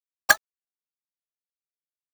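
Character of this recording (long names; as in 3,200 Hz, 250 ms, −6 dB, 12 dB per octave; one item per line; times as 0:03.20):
a quantiser's noise floor 10 bits, dither none
tremolo saw down 2.9 Hz, depth 60%
aliases and images of a low sample rate 13,000 Hz, jitter 0%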